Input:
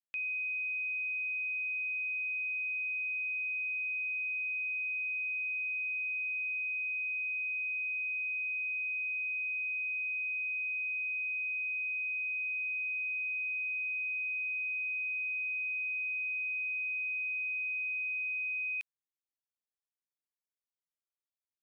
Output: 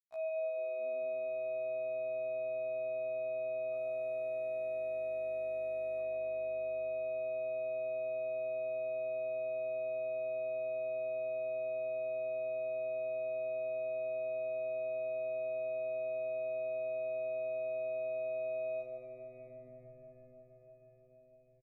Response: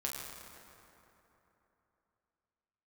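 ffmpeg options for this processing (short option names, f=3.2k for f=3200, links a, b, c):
-filter_complex "[0:a]acrusher=samples=14:mix=1:aa=0.000001,aeval=exprs='sgn(val(0))*max(abs(val(0))-0.00106,0)':c=same,asettb=1/sr,asplit=3[a][b][c];[a]atrim=end=3.734[d];[b]atrim=start=3.73:end=6,asetpts=PTS-STARTPTS,afade=t=in:d=0.004:c=qsin,afade=t=out:st=2.266:d=0.004:c=qsin,aeval=exprs='0.0237*(cos(1*acos(clip(val(0)/0.0237,-1,1)))-cos(1*PI/2))+0.00075*(cos(2*acos(clip(val(0)/0.0237,-1,1)))-cos(2*PI/2))+0.00188*(cos(5*acos(clip(val(0)/0.0237,-1,1)))-cos(5*PI/2))+0.0119*(cos(6*acos(clip(val(0)/0.0237,-1,1)))-cos(6*PI/2))+0.00211*(cos(8*acos(clip(val(0)/0.0237,-1,1)))-cos(8*PI/2))':c=same[e];[c]atrim=start=5.996[f];[d][e]acrossfade=d=0.004:c1=hsin:c2=qsin[g];[g][f]acrossfade=d=0.004:c1=qsin:c2=hsin,asplit=3[h][i][j];[h]bandpass=f=730:t=q:w=8,volume=0dB[k];[i]bandpass=f=1.09k:t=q:w=8,volume=-6dB[l];[j]bandpass=f=2.44k:t=q:w=8,volume=-9dB[m];[k][l][m]amix=inputs=3:normalize=0,bandreject=f=2.4k:w=17,asplit=2[n][o];[o]adelay=14,volume=-5dB[p];[n][p]amix=inputs=2:normalize=0,asplit=7[q][r][s][t][u][v][w];[r]adelay=216,afreqshift=-130,volume=-17dB[x];[s]adelay=432,afreqshift=-260,volume=-20.9dB[y];[t]adelay=648,afreqshift=-390,volume=-24.8dB[z];[u]adelay=864,afreqshift=-520,volume=-28.6dB[aa];[v]adelay=1080,afreqshift=-650,volume=-32.5dB[ab];[w]adelay=1296,afreqshift=-780,volume=-36.4dB[ac];[q][x][y][z][aa][ab][ac]amix=inputs=7:normalize=0[ad];[1:a]atrim=start_sample=2205[ae];[ad][ae]afir=irnorm=-1:irlink=0,acompressor=mode=upward:threshold=-43dB:ratio=2.5,afftfilt=real='re*1.73*eq(mod(b,3),0)':imag='im*1.73*eq(mod(b,3),0)':win_size=2048:overlap=0.75,volume=-2.5dB"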